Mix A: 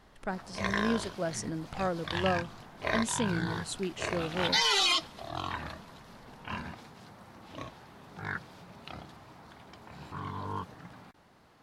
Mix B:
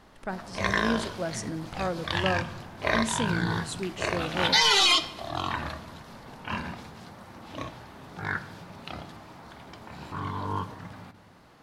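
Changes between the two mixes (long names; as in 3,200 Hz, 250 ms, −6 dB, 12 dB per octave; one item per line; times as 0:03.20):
background +4.0 dB
reverb: on, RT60 0.95 s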